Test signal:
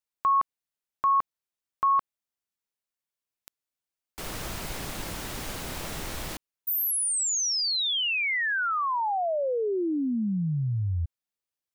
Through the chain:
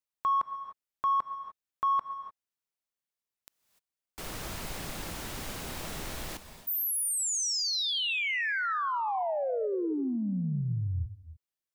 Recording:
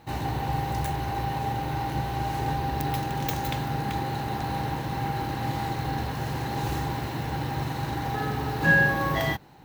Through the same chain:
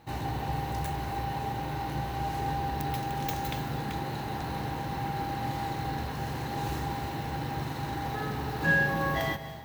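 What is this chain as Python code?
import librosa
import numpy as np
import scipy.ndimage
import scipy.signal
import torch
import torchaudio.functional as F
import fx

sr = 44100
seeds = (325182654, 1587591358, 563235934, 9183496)

p1 = 10.0 ** (-25.0 / 20.0) * np.tanh(x / 10.0 ** (-25.0 / 20.0))
p2 = x + (p1 * 10.0 ** (-11.0 / 20.0))
p3 = fx.rev_gated(p2, sr, seeds[0], gate_ms=320, shape='rising', drr_db=10.5)
y = p3 * 10.0 ** (-5.5 / 20.0)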